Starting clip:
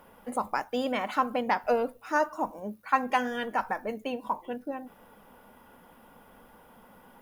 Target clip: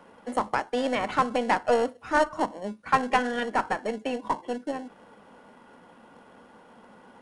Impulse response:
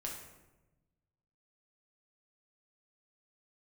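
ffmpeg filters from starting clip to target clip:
-filter_complex "[0:a]highpass=190,highshelf=f=5.7k:g=-7.5,asplit=2[a][b];[b]acrusher=samples=36:mix=1:aa=0.000001,volume=-10dB[c];[a][c]amix=inputs=2:normalize=0,aeval=exprs='0.335*(cos(1*acos(clip(val(0)/0.335,-1,1)))-cos(1*PI/2))+0.015*(cos(6*acos(clip(val(0)/0.335,-1,1)))-cos(6*PI/2))':c=same,acrossover=split=310[d][e];[d]asoftclip=type=hard:threshold=-36.5dB[f];[f][e]amix=inputs=2:normalize=0,aresample=22050,aresample=44100,volume=3dB"

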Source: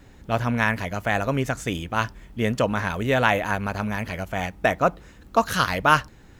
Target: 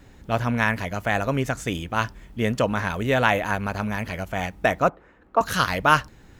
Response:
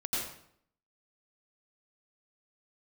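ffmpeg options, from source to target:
-filter_complex "[0:a]asettb=1/sr,asplit=3[a][b][c];[a]atrim=end=4.894[d];[b]atrim=start=4.89:end=5.41,asetpts=PTS-STARTPTS,afade=t=in:d=0.004:c=qsin,afade=t=out:st=0.516:d=0.004:c=qsin,acrossover=split=300 2200:gain=0.224 1 0.0708[e][f][g];[e][f][g]amix=inputs=3:normalize=0[h];[c]atrim=start=5.406[i];[d][h]acrossfade=d=0.004:c1=hsin:c2=qsin[j];[j][i]acrossfade=d=0.004:c1=qsin:c2=hsin"

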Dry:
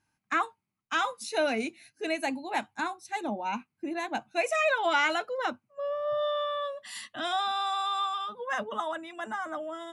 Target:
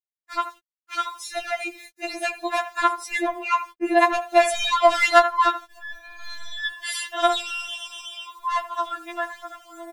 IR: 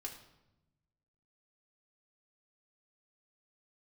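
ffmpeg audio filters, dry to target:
-filter_complex "[0:a]asplit=2[a][b];[b]adelay=80,lowpass=f=2.1k:p=1,volume=-15dB,asplit=2[c][d];[d]adelay=80,lowpass=f=2.1k:p=1,volume=0.17[e];[a][c][e]amix=inputs=3:normalize=0,acrossover=split=290[f][g];[g]asoftclip=type=tanh:threshold=-26.5dB[h];[f][h]amix=inputs=2:normalize=0,equalizer=f=300:t=o:w=2.5:g=-9.5,asplit=2[i][j];[j]acompressor=threshold=-42dB:ratio=6,volume=-2dB[k];[i][k]amix=inputs=2:normalize=0,adynamicequalizer=threshold=0.00501:dfrequency=1100:dqfactor=0.7:tfrequency=1100:tqfactor=0.7:attack=5:release=100:ratio=0.375:range=3.5:mode=boostabove:tftype=bell,dynaudnorm=f=210:g=21:m=10.5dB,aeval=exprs='val(0)*gte(abs(val(0)),0.00562)':c=same,afftfilt=real='re*4*eq(mod(b,16),0)':imag='im*4*eq(mod(b,16),0)':win_size=2048:overlap=0.75,volume=1dB"

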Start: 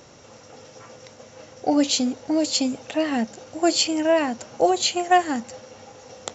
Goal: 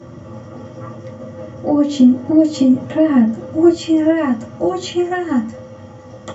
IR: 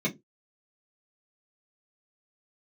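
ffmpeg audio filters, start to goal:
-filter_complex "[0:a]asetnsamples=n=441:p=0,asendcmd='3.69 equalizer g 5',equalizer=f=360:w=0.33:g=11,acompressor=threshold=-14dB:ratio=6[a];[1:a]atrim=start_sample=2205,asetrate=22932,aresample=44100[b];[a][b]afir=irnorm=-1:irlink=0,volume=-10.5dB"

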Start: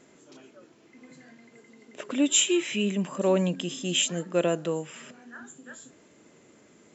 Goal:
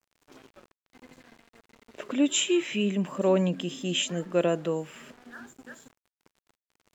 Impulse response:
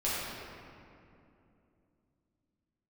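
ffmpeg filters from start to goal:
-af "aeval=exprs='val(0)*gte(abs(val(0)),0.00398)':c=same,aemphasis=mode=reproduction:type=cd"

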